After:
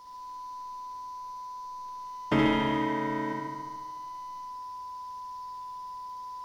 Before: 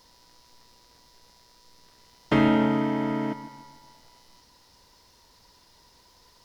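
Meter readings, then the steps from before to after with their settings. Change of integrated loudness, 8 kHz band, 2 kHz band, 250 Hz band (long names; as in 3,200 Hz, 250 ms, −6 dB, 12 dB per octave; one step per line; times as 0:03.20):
−9.0 dB, can't be measured, 0.0 dB, −5.5 dB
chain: notch filter 4,100 Hz, Q 17
steady tone 1,000 Hz −43 dBFS
flutter between parallel walls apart 12 metres, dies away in 1.3 s
level −4 dB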